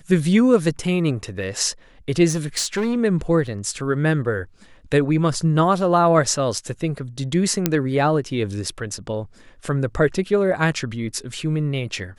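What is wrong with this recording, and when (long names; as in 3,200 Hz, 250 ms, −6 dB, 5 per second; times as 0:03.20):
0:02.29–0:02.97: clipping −17.5 dBFS
0:03.47: drop-out 4.8 ms
0:07.66: click −2 dBFS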